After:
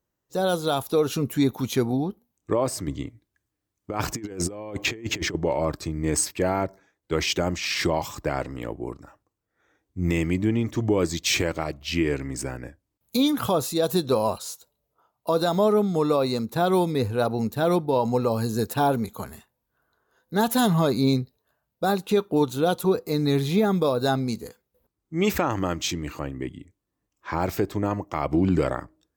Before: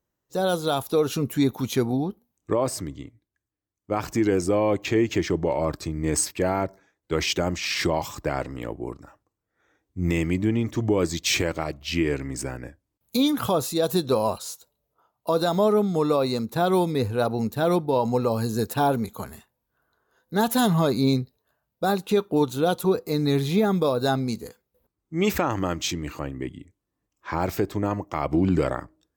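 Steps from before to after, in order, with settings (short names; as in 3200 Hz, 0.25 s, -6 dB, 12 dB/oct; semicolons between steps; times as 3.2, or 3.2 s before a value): 2.87–5.35 negative-ratio compressor -28 dBFS, ratio -0.5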